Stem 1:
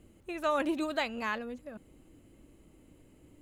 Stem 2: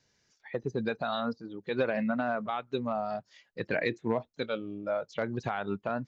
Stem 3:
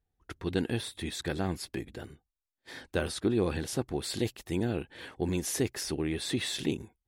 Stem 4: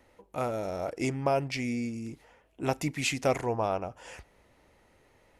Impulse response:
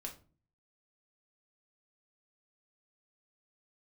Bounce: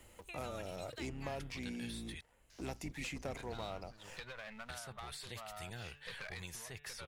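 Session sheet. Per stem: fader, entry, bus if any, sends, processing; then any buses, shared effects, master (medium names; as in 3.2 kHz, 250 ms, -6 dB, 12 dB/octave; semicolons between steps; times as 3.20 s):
-11.5 dB, 0.00 s, bus A, no send, none
-8.5 dB, 2.50 s, bus A, no send, partial rectifier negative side -7 dB; compression 5:1, threshold -39 dBFS, peak gain reduction 13.5 dB; sine folder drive 8 dB, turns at -23 dBFS
-4.5 dB, 1.10 s, muted 2.21–4.69 s, bus A, no send, de-hum 145.3 Hz, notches 27
-19.5 dB, 0.00 s, no bus, no send, octave divider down 2 oct, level -1 dB; hum notches 60/120 Hz; waveshaping leveller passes 2
bus A: 0.0 dB, amplifier tone stack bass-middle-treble 10-0-10; compression 3:1, threshold -47 dBFS, peak gain reduction 9 dB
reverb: none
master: three bands compressed up and down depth 70%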